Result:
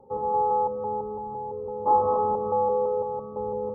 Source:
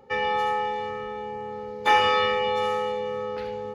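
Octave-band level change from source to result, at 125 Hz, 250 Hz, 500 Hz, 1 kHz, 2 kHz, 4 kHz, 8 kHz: +1.5 dB, +1.5 dB, +1.0 dB, +0.5 dB, below −40 dB, below −40 dB, can't be measured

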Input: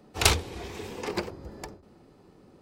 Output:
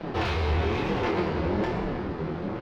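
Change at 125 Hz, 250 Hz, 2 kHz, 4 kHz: +7.0, +11.0, +0.5, −7.0 decibels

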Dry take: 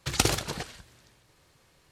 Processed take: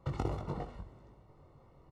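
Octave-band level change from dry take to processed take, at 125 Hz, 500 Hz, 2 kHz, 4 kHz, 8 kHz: −3.0 dB, −6.5 dB, −20.5 dB, −27.0 dB, below −30 dB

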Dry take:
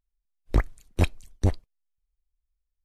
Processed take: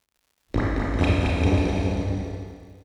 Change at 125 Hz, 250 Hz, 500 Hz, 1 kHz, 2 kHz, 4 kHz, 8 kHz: +5.0, +10.5, +8.5, +8.5, +8.5, +8.0, +2.0 decibels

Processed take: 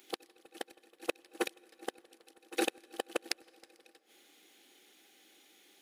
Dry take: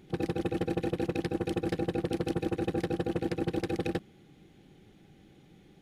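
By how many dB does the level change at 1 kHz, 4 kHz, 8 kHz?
−5.0, +2.5, +7.0 decibels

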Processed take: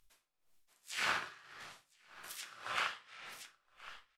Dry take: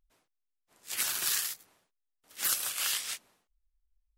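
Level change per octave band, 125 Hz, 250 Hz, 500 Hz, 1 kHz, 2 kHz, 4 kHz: can't be measured, −1.0 dB, +2.0 dB, +4.5 dB, +0.5 dB, −8.5 dB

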